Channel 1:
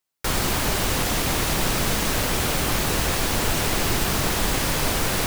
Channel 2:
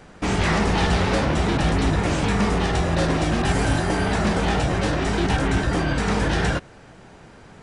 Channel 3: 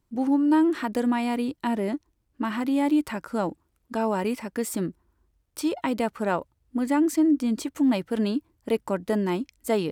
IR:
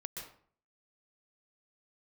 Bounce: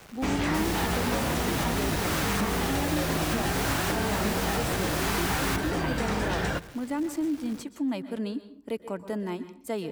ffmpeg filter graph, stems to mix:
-filter_complex "[0:a]highpass=frequency=1000:width=0.5412,highpass=frequency=1000:width=1.3066,adelay=300,volume=-2dB,asplit=2[link_01][link_02];[link_02]volume=-4.5dB[link_03];[1:a]acrusher=bits=6:mix=0:aa=0.000001,volume=-5.5dB,asplit=2[link_04][link_05];[link_05]volume=-15.5dB[link_06];[2:a]volume=-9.5dB,asplit=3[link_07][link_08][link_09];[link_08]volume=-5dB[link_10];[link_09]apad=whole_len=245285[link_11];[link_01][link_11]sidechaincompress=threshold=-51dB:ratio=8:attack=16:release=182[link_12];[3:a]atrim=start_sample=2205[link_13];[link_03][link_06][link_10]amix=inputs=3:normalize=0[link_14];[link_14][link_13]afir=irnorm=-1:irlink=0[link_15];[link_12][link_04][link_07][link_15]amix=inputs=4:normalize=0,acrossover=split=200|1900|7600[link_16][link_17][link_18][link_19];[link_16]acompressor=threshold=-31dB:ratio=4[link_20];[link_17]acompressor=threshold=-26dB:ratio=4[link_21];[link_18]acompressor=threshold=-36dB:ratio=4[link_22];[link_19]acompressor=threshold=-38dB:ratio=4[link_23];[link_20][link_21][link_22][link_23]amix=inputs=4:normalize=0"

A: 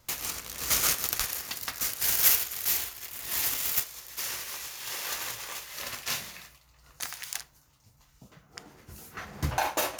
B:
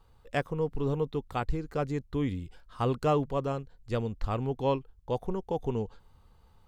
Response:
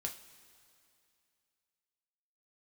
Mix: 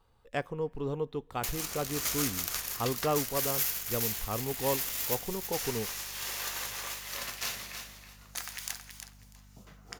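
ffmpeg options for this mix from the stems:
-filter_complex "[0:a]acompressor=threshold=-34dB:ratio=2,aeval=exprs='val(0)+0.00316*(sin(2*PI*50*n/s)+sin(2*PI*2*50*n/s)/2+sin(2*PI*3*50*n/s)/3+sin(2*PI*4*50*n/s)/4+sin(2*PI*5*50*n/s)/5)':channel_layout=same,adelay=1350,volume=-2.5dB,asplit=3[link_01][link_02][link_03];[link_02]volume=-7dB[link_04];[link_03]volume=-6dB[link_05];[1:a]volume=-3.5dB,asplit=2[link_06][link_07];[link_07]volume=-15.5dB[link_08];[2:a]atrim=start_sample=2205[link_09];[link_04][link_08]amix=inputs=2:normalize=0[link_10];[link_10][link_09]afir=irnorm=-1:irlink=0[link_11];[link_05]aecho=0:1:322|644|966:1|0.17|0.0289[link_12];[link_01][link_06][link_11][link_12]amix=inputs=4:normalize=0,lowshelf=frequency=130:gain=-7"

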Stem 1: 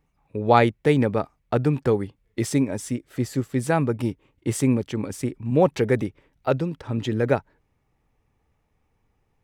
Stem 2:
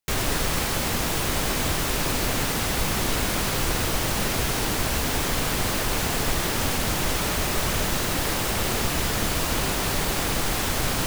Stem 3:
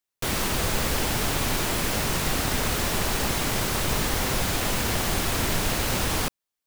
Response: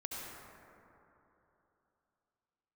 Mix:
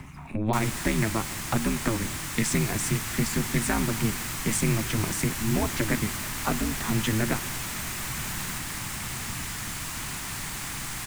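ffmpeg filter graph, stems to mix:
-filter_complex "[0:a]acompressor=mode=upward:threshold=-28dB:ratio=2.5,aeval=exprs='val(0)*sin(2*PI*110*n/s)':channel_layout=same,acrossover=split=95|500[link_01][link_02][link_03];[link_01]acompressor=threshold=-38dB:ratio=4[link_04];[link_02]acompressor=threshold=-31dB:ratio=4[link_05];[link_03]acompressor=threshold=-35dB:ratio=4[link_06];[link_04][link_05][link_06]amix=inputs=3:normalize=0,volume=2.5dB,asplit=2[link_07][link_08];[link_08]volume=-15.5dB[link_09];[1:a]highshelf=frequency=5100:gain=5,adelay=450,volume=-14.5dB[link_10];[2:a]equalizer=frequency=14000:width_type=o:width=0.26:gain=14,alimiter=limit=-22dB:level=0:latency=1,adelay=2300,volume=-10.5dB[link_11];[3:a]atrim=start_sample=2205[link_12];[link_09][link_12]afir=irnorm=-1:irlink=0[link_13];[link_07][link_10][link_11][link_13]amix=inputs=4:normalize=0,equalizer=frequency=125:width_type=o:width=1:gain=7,equalizer=frequency=250:width_type=o:width=1:gain=3,equalizer=frequency=500:width_type=o:width=1:gain=-10,equalizer=frequency=1000:width_type=o:width=1:gain=5,equalizer=frequency=2000:width_type=o:width=1:gain=7,equalizer=frequency=8000:width_type=o:width=1:gain=7"

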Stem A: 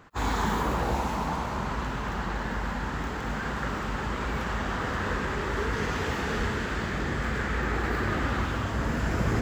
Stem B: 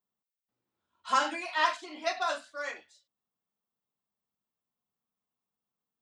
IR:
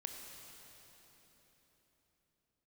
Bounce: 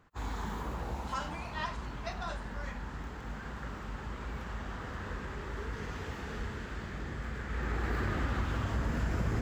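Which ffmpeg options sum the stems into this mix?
-filter_complex "[0:a]lowshelf=frequency=110:gain=7.5,volume=-2dB,afade=type=in:start_time=7.47:duration=0.5:silence=0.298538[link_01];[1:a]volume=-10dB[link_02];[link_01][link_02]amix=inputs=2:normalize=0,acompressor=threshold=-31dB:ratio=2.5"

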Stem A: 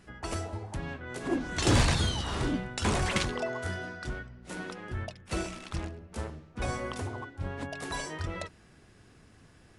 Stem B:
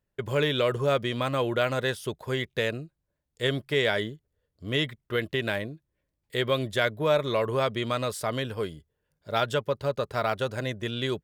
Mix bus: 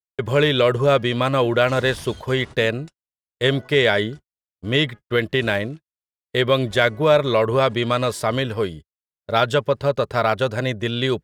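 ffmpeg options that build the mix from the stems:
ffmpeg -i stem1.wav -i stem2.wav -filter_complex "[0:a]asoftclip=type=hard:threshold=-23.5dB,adelay=100,volume=-11.5dB[link_01];[1:a]highshelf=frequency=8900:gain=-8,acontrast=44,volume=2.5dB,asplit=2[link_02][link_03];[link_03]apad=whole_len=435717[link_04];[link_01][link_04]sidechaingate=range=-28dB:threshold=-32dB:ratio=16:detection=peak[link_05];[link_05][link_02]amix=inputs=2:normalize=0,agate=range=-44dB:threshold=-36dB:ratio=16:detection=peak" out.wav

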